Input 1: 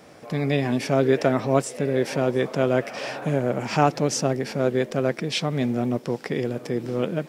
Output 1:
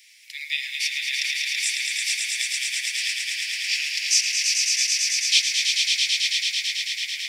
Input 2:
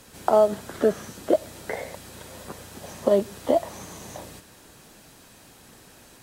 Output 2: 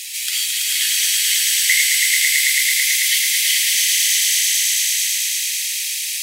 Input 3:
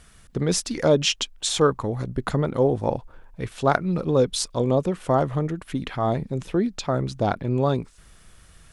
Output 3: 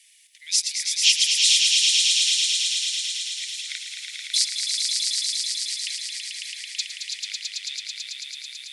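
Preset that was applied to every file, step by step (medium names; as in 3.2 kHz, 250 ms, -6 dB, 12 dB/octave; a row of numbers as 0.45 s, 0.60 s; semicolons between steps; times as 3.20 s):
steep high-pass 2 kHz 72 dB/octave; dynamic bell 4.6 kHz, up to +5 dB, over -45 dBFS, Q 1.5; echo with a slow build-up 110 ms, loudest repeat 5, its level -4.5 dB; peak normalisation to -3 dBFS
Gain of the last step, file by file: +5.5 dB, +23.5 dB, +2.5 dB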